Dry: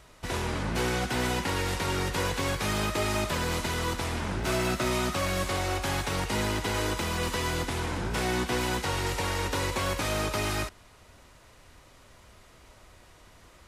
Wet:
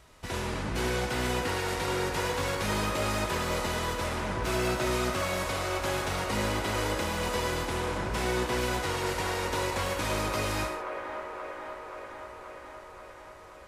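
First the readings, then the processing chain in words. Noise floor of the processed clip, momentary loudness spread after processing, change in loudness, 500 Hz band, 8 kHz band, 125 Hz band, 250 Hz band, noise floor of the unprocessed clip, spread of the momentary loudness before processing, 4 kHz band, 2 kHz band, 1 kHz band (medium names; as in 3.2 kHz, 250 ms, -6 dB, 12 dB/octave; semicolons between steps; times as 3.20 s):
-48 dBFS, 13 LU, -1.0 dB, +1.0 dB, -2.0 dB, -2.5 dB, -1.5 dB, -55 dBFS, 3 LU, -2.0 dB, -0.5 dB, +0.5 dB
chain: on a send: feedback echo behind a band-pass 530 ms, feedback 72%, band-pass 870 Hz, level -4 dB; on the sum: gated-style reverb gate 160 ms flat, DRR 5 dB; trim -3 dB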